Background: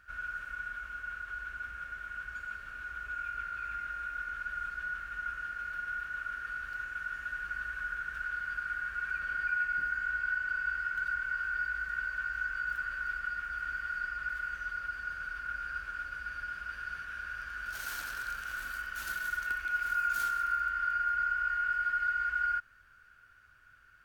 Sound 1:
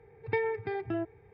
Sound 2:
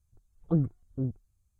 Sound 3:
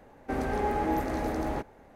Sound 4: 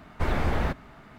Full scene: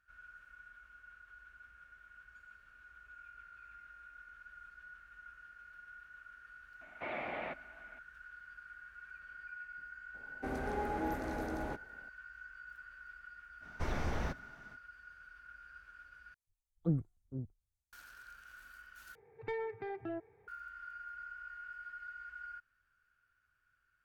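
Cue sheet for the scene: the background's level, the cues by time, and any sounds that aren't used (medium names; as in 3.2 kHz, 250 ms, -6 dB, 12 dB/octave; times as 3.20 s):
background -16.5 dB
6.81 s: add 4 -8.5 dB + cabinet simulation 390–3000 Hz, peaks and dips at 430 Hz -8 dB, 640 Hz +5 dB, 1 kHz -5 dB, 1.5 kHz -8 dB, 2.3 kHz +8 dB
10.14 s: add 3 -8.5 dB
13.60 s: add 4 -10.5 dB, fades 0.05 s + peaking EQ 5.8 kHz +11 dB 0.36 oct
16.34 s: replace with 2 -10.5 dB + three bands expanded up and down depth 70%
19.15 s: replace with 1 -10 dB + overdrive pedal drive 14 dB, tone 1.1 kHz, clips at -17 dBFS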